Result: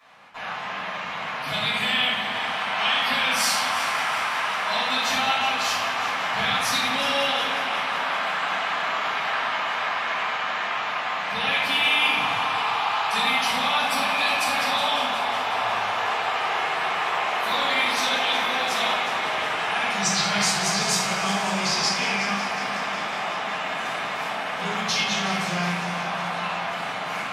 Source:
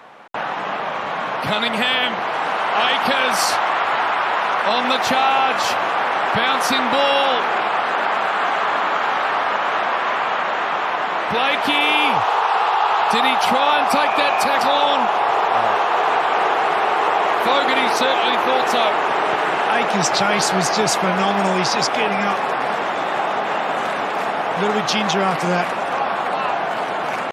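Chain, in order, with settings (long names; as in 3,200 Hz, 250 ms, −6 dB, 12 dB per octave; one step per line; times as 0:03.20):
guitar amp tone stack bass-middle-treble 5-5-5
on a send: echo machine with several playback heads 183 ms, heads first and second, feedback 67%, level −14.5 dB
on the sum: rectangular room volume 330 cubic metres, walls mixed, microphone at 5.9 metres
level −7 dB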